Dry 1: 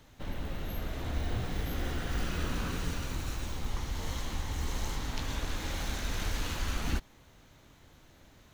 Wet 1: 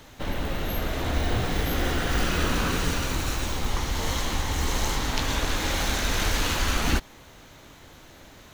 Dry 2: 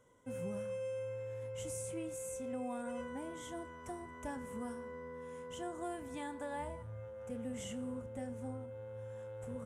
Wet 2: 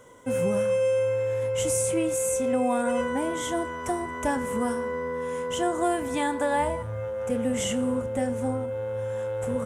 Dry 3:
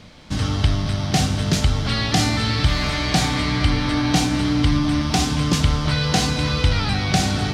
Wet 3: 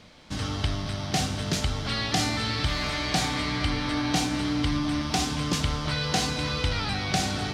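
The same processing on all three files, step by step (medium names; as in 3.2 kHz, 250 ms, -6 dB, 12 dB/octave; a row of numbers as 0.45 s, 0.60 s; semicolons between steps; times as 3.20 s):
tone controls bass -5 dB, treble 0 dB; normalise loudness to -27 LUFS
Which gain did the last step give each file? +11.5 dB, +17.5 dB, -5.0 dB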